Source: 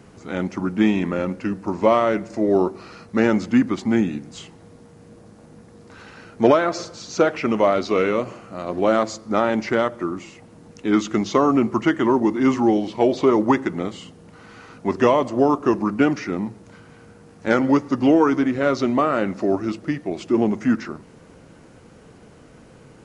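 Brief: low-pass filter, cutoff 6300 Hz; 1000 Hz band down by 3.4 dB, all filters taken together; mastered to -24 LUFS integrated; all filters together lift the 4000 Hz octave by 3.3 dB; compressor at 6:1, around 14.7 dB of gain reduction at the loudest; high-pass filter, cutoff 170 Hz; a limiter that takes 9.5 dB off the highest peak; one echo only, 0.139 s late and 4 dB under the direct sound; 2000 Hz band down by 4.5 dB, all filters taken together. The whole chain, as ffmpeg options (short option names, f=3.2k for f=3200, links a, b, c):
-af "highpass=170,lowpass=6.3k,equalizer=f=1k:t=o:g=-3,equalizer=f=2k:t=o:g=-6.5,equalizer=f=4k:t=o:g=7.5,acompressor=threshold=-29dB:ratio=6,alimiter=level_in=2dB:limit=-24dB:level=0:latency=1,volume=-2dB,aecho=1:1:139:0.631,volume=11dB"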